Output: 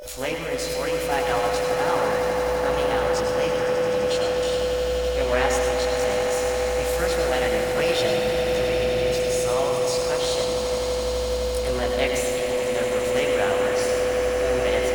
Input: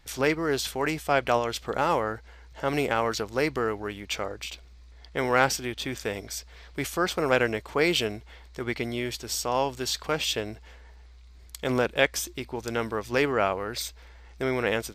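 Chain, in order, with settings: whistle 500 Hz -31 dBFS; in parallel at -7 dB: bit crusher 7-bit; on the sum: chorus voices 6, 1 Hz, delay 21 ms, depth 3.1 ms; formant shift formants +3 st; echo with a slow build-up 84 ms, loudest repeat 8, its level -13 dB; on a send at -2.5 dB: reverberation RT60 2.8 s, pre-delay 101 ms; on the sum: trim -3.5 dB

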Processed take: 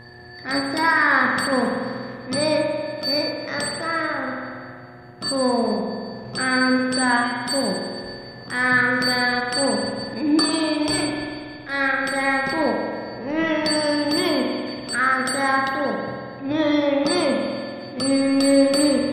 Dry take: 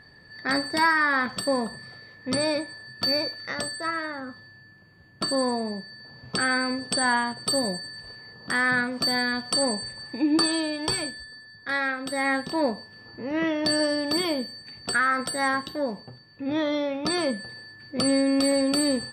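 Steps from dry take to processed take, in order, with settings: in parallel at 0 dB: peak limiter -21.5 dBFS, peak gain reduction 10.5 dB; on the sum: transient shaper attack -10 dB, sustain -6 dB; mains buzz 120 Hz, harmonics 9, -47 dBFS -5 dB/octave; spring tank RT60 2.1 s, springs 47 ms, chirp 45 ms, DRR 0 dB

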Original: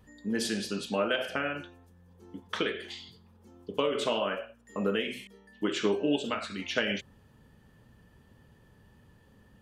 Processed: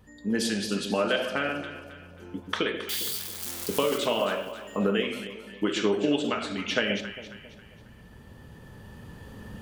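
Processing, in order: 2.89–3.98 s: zero-crossing glitches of -27.5 dBFS; recorder AGC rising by 5.2 dB/s; echo whose repeats swap between lows and highs 135 ms, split 910 Hz, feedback 64%, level -8 dB; trim +2.5 dB

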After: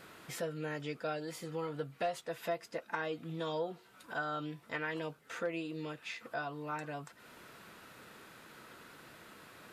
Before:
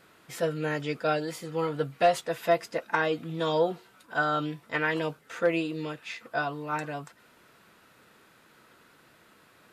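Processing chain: compression 2:1, threshold -51 dBFS, peak gain reduction 18 dB; trim +4 dB

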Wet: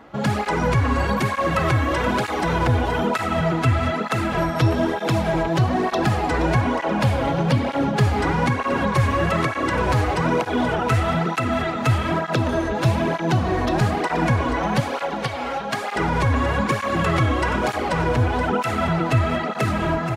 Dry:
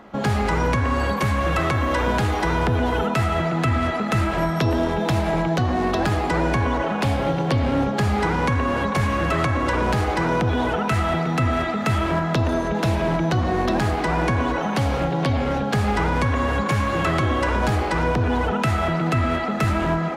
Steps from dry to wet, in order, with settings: 14.80–15.96 s: high-pass 520 Hz 12 dB/octave; feedback delay 476 ms, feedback 46%, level -10 dB; cancelling through-zero flanger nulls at 1.1 Hz, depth 5.8 ms; trim +3 dB

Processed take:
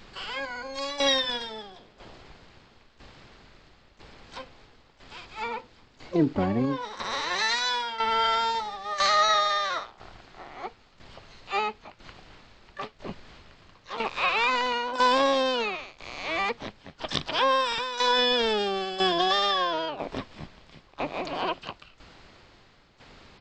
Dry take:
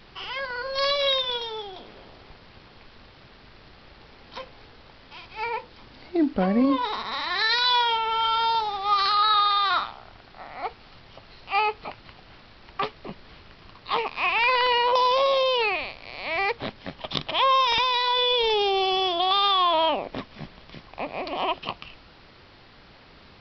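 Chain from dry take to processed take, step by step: tremolo saw down 1 Hz, depth 80%; harmony voices -12 st -8 dB, +7 st -10 dB

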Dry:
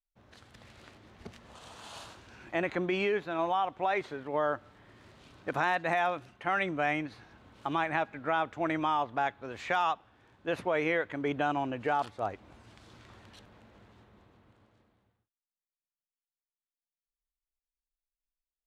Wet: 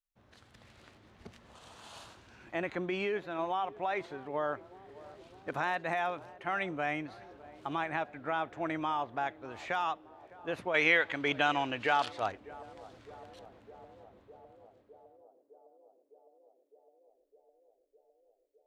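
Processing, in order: 10.74–12.32 s: peaking EQ 3.6 kHz +14.5 dB 3 oct; band-passed feedback delay 608 ms, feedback 82%, band-pass 480 Hz, level -18 dB; trim -4 dB

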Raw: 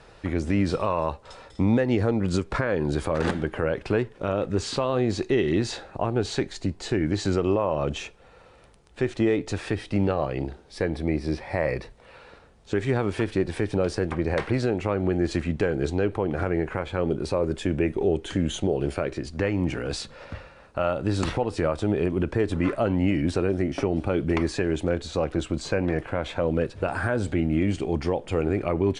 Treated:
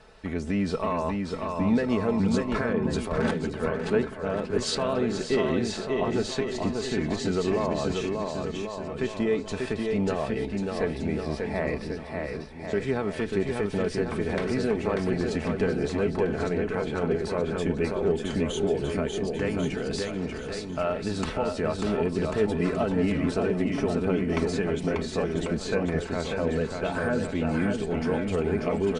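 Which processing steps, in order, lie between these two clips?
comb 4.6 ms, depth 54%; bouncing-ball echo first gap 590 ms, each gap 0.85×, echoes 5; 2.73–4.75 s: three bands expanded up and down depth 100%; trim -4 dB

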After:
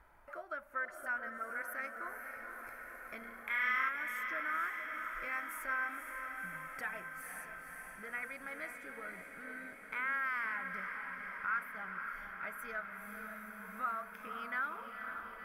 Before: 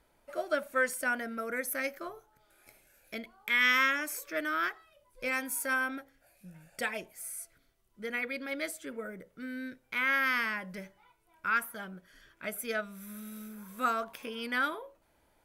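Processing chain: resonant high shelf 1.7 kHz -8.5 dB, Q 1.5; 3.18–3.89 s: flutter echo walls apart 5.9 m, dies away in 0.88 s; compression 2:1, threshold -58 dBFS, peak gain reduction 19.5 dB; 0.85–1.62 s: phase dispersion highs, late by 41 ms, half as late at 1 kHz; on a send: echo that smears into a reverb 506 ms, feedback 73%, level -6.5 dB; 4.64–5.45 s: on the sum: modulation noise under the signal 34 dB; graphic EQ 125/250/500/2000/4000/8000 Hz -4/-9/-8/+9/-6/-6 dB; trim +7 dB

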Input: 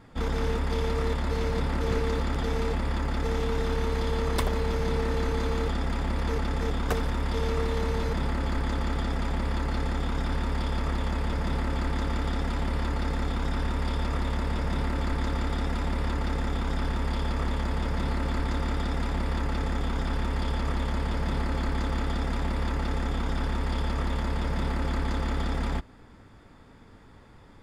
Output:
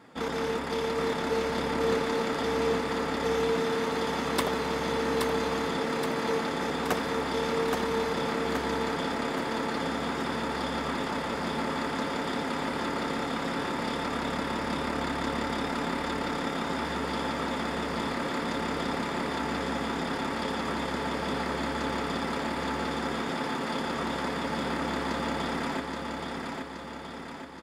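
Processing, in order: high-pass 230 Hz 12 dB/octave; feedback delay 824 ms, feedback 55%, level -4 dB; trim +2 dB

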